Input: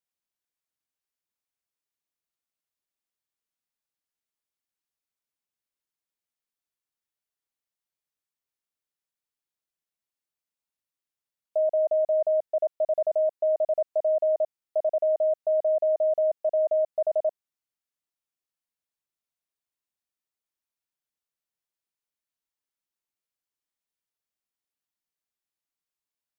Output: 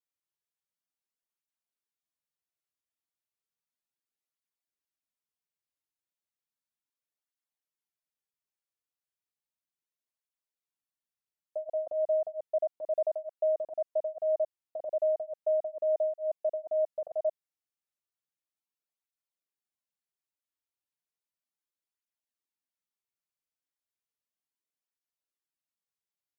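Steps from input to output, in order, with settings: tape flanging out of phase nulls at 0.34 Hz, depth 5.2 ms; gain -3 dB

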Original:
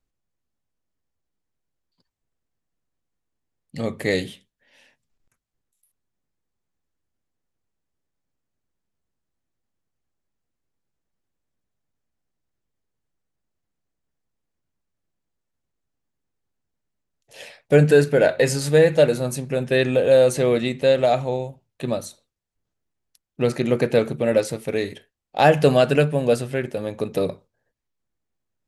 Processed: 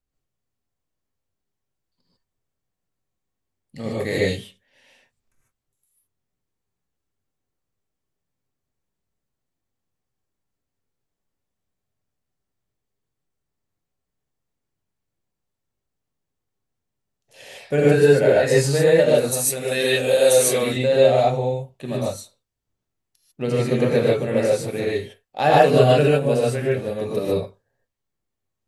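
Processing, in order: 19.18–20.63 RIAA curve recording; non-linear reverb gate 0.17 s rising, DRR -6 dB; gain -6 dB

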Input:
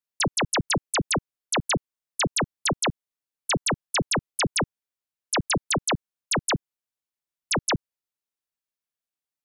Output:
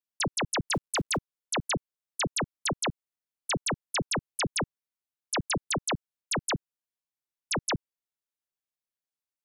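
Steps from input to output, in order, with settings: 0.72–1.17 G.711 law mismatch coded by mu; gain -5 dB

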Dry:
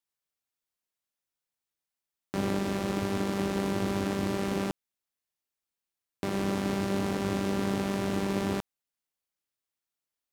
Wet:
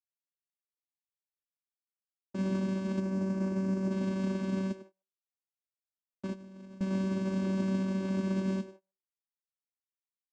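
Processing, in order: minimum comb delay 0.71 ms; modulation noise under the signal 11 dB; 2.99–3.91 bell 3200 Hz -12 dB 1.2 oct; frequency-shifting echo 0.1 s, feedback 34%, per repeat +140 Hz, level -15 dB; gate -49 dBFS, range -26 dB; vocoder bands 8, saw 191 Hz; dynamic EQ 770 Hz, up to -5 dB, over -56 dBFS, Q 1.8; 6.32–6.81 negative-ratio compressor -51 dBFS, ratio -1; comb 3.4 ms, depth 87%; gain +4 dB

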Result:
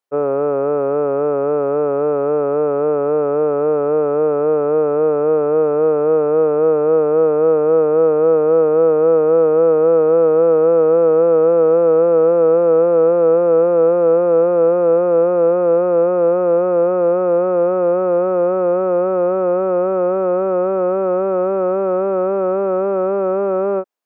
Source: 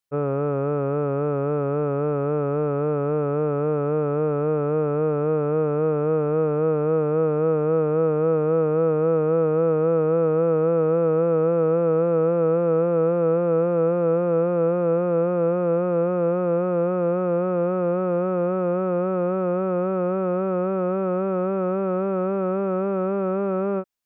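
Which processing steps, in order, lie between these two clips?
HPF 490 Hz 12 dB/oct; tilt shelf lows +8.5 dB, about 1200 Hz; gain +5.5 dB

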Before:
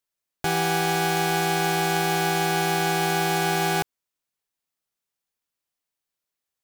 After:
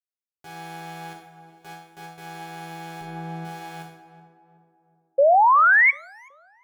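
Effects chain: HPF 85 Hz 12 dB/oct; 1.13–2.18 gate with hold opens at -11 dBFS; 3.01–3.45 tilt -3.5 dB/oct; resonator bank C#2 minor, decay 0.62 s; 5.18–5.91 painted sound rise 530–2300 Hz -11 dBFS; on a send: tape echo 0.374 s, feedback 56%, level -9 dB, low-pass 1000 Hz; on the sum: Schroeder reverb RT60 0.34 s, combs from 26 ms, DRR 18.5 dB; gain -4 dB

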